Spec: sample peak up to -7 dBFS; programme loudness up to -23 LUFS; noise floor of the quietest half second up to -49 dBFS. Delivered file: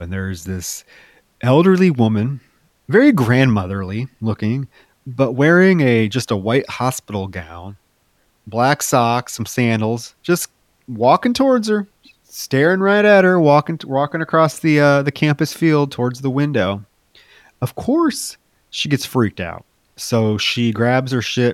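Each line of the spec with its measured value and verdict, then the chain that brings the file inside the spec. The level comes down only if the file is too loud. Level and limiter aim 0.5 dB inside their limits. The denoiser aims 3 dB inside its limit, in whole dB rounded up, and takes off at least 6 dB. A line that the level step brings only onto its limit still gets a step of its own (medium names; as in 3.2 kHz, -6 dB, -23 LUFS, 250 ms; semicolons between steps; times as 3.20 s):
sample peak -1.5 dBFS: fail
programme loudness -16.5 LUFS: fail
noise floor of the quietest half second -61 dBFS: pass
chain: trim -7 dB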